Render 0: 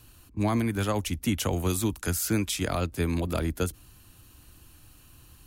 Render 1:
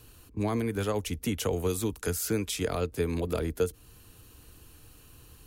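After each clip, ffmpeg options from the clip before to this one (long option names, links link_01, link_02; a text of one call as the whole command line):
ffmpeg -i in.wav -af "equalizer=frequency=450:width=5.4:gain=12.5,acompressor=threshold=-33dB:ratio=1.5" out.wav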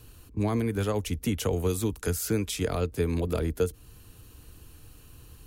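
ffmpeg -i in.wav -af "lowshelf=frequency=210:gain=5" out.wav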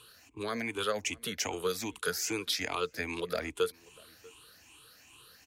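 ffmpeg -i in.wav -filter_complex "[0:a]afftfilt=real='re*pow(10,14/40*sin(2*PI*(0.65*log(max(b,1)*sr/1024/100)/log(2)-(2.5)*(pts-256)/sr)))':imag='im*pow(10,14/40*sin(2*PI*(0.65*log(max(b,1)*sr/1024/100)/log(2)-(2.5)*(pts-256)/sr)))':win_size=1024:overlap=0.75,bandpass=frequency=2800:width_type=q:width=0.58:csg=0,asplit=2[link_01][link_02];[link_02]adelay=641.4,volume=-24dB,highshelf=frequency=4000:gain=-14.4[link_03];[link_01][link_03]amix=inputs=2:normalize=0,volume=3dB" out.wav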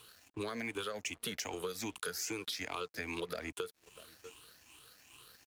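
ffmpeg -i in.wav -af "alimiter=level_in=1dB:limit=-24dB:level=0:latency=1:release=347,volume=-1dB,acompressor=threshold=-38dB:ratio=10,aeval=exprs='sgn(val(0))*max(abs(val(0))-0.001,0)':channel_layout=same,volume=3.5dB" out.wav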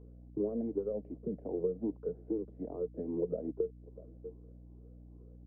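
ffmpeg -i in.wav -af "asuperpass=centerf=290:order=8:qfactor=0.66,aeval=exprs='val(0)+0.00112*(sin(2*PI*60*n/s)+sin(2*PI*2*60*n/s)/2+sin(2*PI*3*60*n/s)/3+sin(2*PI*4*60*n/s)/4+sin(2*PI*5*60*n/s)/5)':channel_layout=same,volume=7.5dB" out.wav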